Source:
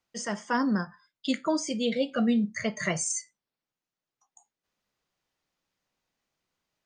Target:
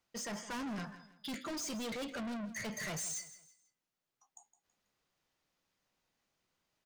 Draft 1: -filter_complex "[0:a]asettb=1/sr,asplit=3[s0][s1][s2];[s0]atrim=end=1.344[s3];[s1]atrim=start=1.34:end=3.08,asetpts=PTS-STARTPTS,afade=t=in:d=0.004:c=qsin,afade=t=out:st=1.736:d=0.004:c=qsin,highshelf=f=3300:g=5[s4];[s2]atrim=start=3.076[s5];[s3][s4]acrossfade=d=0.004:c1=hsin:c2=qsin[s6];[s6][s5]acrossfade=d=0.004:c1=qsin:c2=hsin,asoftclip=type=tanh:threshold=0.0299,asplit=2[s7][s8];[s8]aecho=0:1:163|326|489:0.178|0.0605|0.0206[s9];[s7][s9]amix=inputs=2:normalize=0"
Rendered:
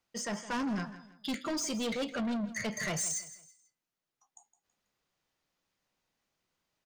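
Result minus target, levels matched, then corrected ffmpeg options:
saturation: distortion -4 dB
-filter_complex "[0:a]asettb=1/sr,asplit=3[s0][s1][s2];[s0]atrim=end=1.344[s3];[s1]atrim=start=1.34:end=3.08,asetpts=PTS-STARTPTS,afade=t=in:d=0.004:c=qsin,afade=t=out:st=1.736:d=0.004:c=qsin,highshelf=f=3300:g=5[s4];[s2]atrim=start=3.076[s5];[s3][s4]acrossfade=d=0.004:c1=hsin:c2=qsin[s6];[s6][s5]acrossfade=d=0.004:c1=qsin:c2=hsin,asoftclip=type=tanh:threshold=0.0119,asplit=2[s7][s8];[s8]aecho=0:1:163|326|489:0.178|0.0605|0.0206[s9];[s7][s9]amix=inputs=2:normalize=0"

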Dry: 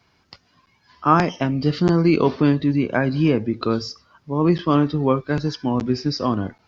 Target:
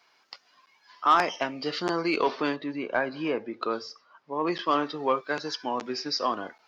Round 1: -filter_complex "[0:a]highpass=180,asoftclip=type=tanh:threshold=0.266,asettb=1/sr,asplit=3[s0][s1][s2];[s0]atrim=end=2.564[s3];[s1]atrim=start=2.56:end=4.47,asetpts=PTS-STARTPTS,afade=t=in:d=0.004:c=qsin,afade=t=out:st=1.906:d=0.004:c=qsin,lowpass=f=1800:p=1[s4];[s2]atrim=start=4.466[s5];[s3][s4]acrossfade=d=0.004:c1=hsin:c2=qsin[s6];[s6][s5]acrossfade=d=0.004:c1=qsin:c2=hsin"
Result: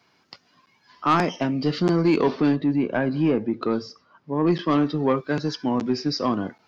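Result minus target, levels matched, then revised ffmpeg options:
250 Hz band +6.0 dB
-filter_complex "[0:a]highpass=600,asoftclip=type=tanh:threshold=0.266,asettb=1/sr,asplit=3[s0][s1][s2];[s0]atrim=end=2.564[s3];[s1]atrim=start=2.56:end=4.47,asetpts=PTS-STARTPTS,afade=t=in:d=0.004:c=qsin,afade=t=out:st=1.906:d=0.004:c=qsin,lowpass=f=1800:p=1[s4];[s2]atrim=start=4.466[s5];[s3][s4]acrossfade=d=0.004:c1=hsin:c2=qsin[s6];[s6][s5]acrossfade=d=0.004:c1=qsin:c2=hsin"

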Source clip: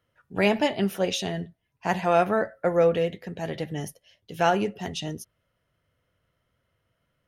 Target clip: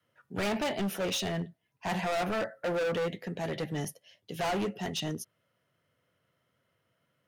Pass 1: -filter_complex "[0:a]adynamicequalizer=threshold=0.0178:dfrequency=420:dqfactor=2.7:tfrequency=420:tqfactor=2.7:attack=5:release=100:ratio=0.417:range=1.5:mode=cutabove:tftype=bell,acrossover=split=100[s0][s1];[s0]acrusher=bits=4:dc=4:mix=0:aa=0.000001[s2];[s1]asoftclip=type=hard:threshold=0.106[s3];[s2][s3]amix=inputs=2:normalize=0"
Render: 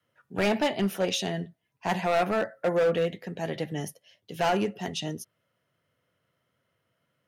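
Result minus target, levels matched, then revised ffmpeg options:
hard clipper: distortion -6 dB
-filter_complex "[0:a]adynamicequalizer=threshold=0.0178:dfrequency=420:dqfactor=2.7:tfrequency=420:tqfactor=2.7:attack=5:release=100:ratio=0.417:range=1.5:mode=cutabove:tftype=bell,acrossover=split=100[s0][s1];[s0]acrusher=bits=4:dc=4:mix=0:aa=0.000001[s2];[s1]asoftclip=type=hard:threshold=0.0398[s3];[s2][s3]amix=inputs=2:normalize=0"

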